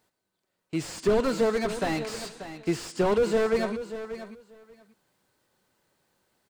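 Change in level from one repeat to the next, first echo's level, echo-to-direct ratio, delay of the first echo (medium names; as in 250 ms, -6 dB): -16.5 dB, -12.0 dB, -12.0 dB, 586 ms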